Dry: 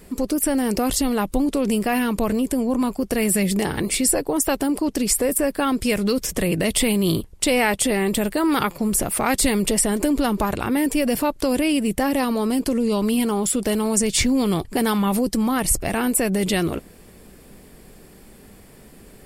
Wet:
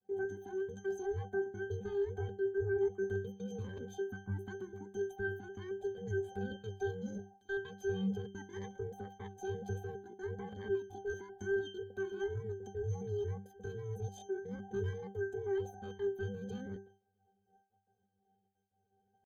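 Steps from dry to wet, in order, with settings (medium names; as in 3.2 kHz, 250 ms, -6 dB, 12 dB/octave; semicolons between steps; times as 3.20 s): every band turned upside down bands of 500 Hz; expander -33 dBFS; compression 2.5:1, threshold -23 dBFS, peak gain reduction 6.5 dB; trance gate "xxxxxxxx.x." 194 bpm -24 dB; pitch-class resonator C, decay 0.32 s; pitch shift +7 st; trim -1.5 dB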